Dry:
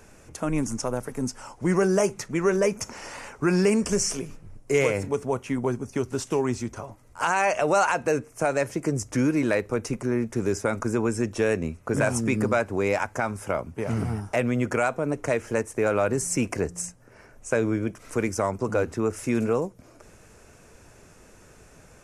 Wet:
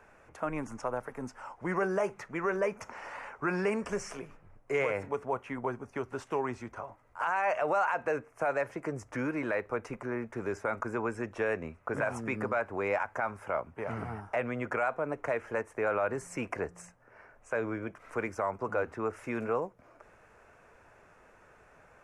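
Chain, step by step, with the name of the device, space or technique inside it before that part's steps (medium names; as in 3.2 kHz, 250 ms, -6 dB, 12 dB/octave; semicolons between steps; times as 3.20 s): DJ mixer with the lows and highs turned down (three-band isolator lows -13 dB, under 570 Hz, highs -20 dB, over 2.3 kHz; peak limiter -20 dBFS, peak gain reduction 7 dB)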